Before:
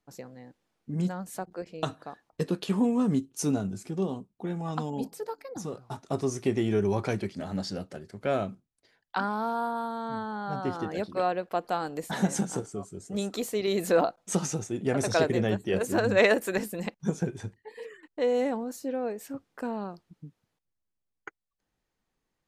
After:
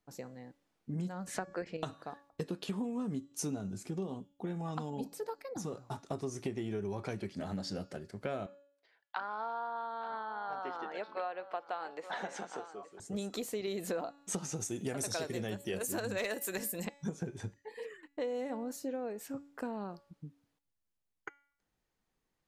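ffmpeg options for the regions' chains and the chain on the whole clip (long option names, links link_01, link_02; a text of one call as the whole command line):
ffmpeg -i in.wav -filter_complex "[0:a]asettb=1/sr,asplit=3[link_01][link_02][link_03];[link_01]atrim=end=1.274[link_04];[link_02]atrim=start=1.27:end=1.77,asetpts=PTS-STARTPTS,afade=type=in:duration=0.004:curve=qsin,afade=type=out:start_time=0.496:duration=0.004:curve=qsin,lowpass=6900,equalizer=frequency=1800:width=2.1:gain=9.5,acontrast=78[link_05];[link_03]atrim=start=1.766[link_06];[link_04][link_05]acrossfade=duration=0.004:curve1=hsin:curve2=qsin[link_07];[link_07][link_06]acrossfade=duration=0.004:curve1=qsin:curve2=hsin,asettb=1/sr,asplit=3[link_08][link_09][link_10];[link_08]atrim=end=8.464[link_11];[link_09]atrim=start=8.46:end=13,asetpts=PTS-STARTPTS,afade=type=in:duration=0.004:curve=qsin,afade=type=out:start_time=4.536:duration=0.004:curve=qsin,highpass=620,lowpass=3300,aecho=1:1:872:0.158,atrim=end_sample=200214[link_12];[link_10]atrim=start=12.996[link_13];[link_11][link_12]acrossfade=duration=0.004:curve1=hsin:curve2=qsin[link_14];[link_14][link_13]acrossfade=duration=0.004:curve1=qsin:curve2=hsin,asettb=1/sr,asplit=3[link_15][link_16][link_17];[link_15]atrim=end=14.604[link_18];[link_16]atrim=start=14.6:end=16.85,asetpts=PTS-STARTPTS,afade=type=in:duration=0.004:curve=qsin,afade=type=out:start_time=2.246:duration=0.004:curve=qsin,aemphasis=mode=production:type=75kf,asoftclip=type=hard:threshold=-12.5dB[link_19];[link_17]atrim=start=16.846[link_20];[link_18][link_19]acrossfade=duration=0.004:curve1=hsin:curve2=qsin[link_21];[link_21][link_20]acrossfade=duration=0.004:curve1=qsin:curve2=hsin,bandreject=frequency=283.4:width_type=h:width=4,bandreject=frequency=566.8:width_type=h:width=4,bandreject=frequency=850.2:width_type=h:width=4,bandreject=frequency=1133.6:width_type=h:width=4,bandreject=frequency=1417:width_type=h:width=4,bandreject=frequency=1700.4:width_type=h:width=4,bandreject=frequency=1983.8:width_type=h:width=4,bandreject=frequency=2267.2:width_type=h:width=4,bandreject=frequency=2550.6:width_type=h:width=4,bandreject=frequency=2834:width_type=h:width=4,bandreject=frequency=3117.4:width_type=h:width=4,bandreject=frequency=3400.8:width_type=h:width=4,bandreject=frequency=3684.2:width_type=h:width=4,bandreject=frequency=3967.6:width_type=h:width=4,bandreject=frequency=4251:width_type=h:width=4,bandreject=frequency=4534.4:width_type=h:width=4,bandreject=frequency=4817.8:width_type=h:width=4,bandreject=frequency=5101.2:width_type=h:width=4,bandreject=frequency=5384.6:width_type=h:width=4,bandreject=frequency=5668:width_type=h:width=4,bandreject=frequency=5951.4:width_type=h:width=4,bandreject=frequency=6234.8:width_type=h:width=4,bandreject=frequency=6518.2:width_type=h:width=4,bandreject=frequency=6801.6:width_type=h:width=4,bandreject=frequency=7085:width_type=h:width=4,bandreject=frequency=7368.4:width_type=h:width=4,bandreject=frequency=7651.8:width_type=h:width=4,bandreject=frequency=7935.2:width_type=h:width=4,acompressor=threshold=-32dB:ratio=6,volume=-2dB" out.wav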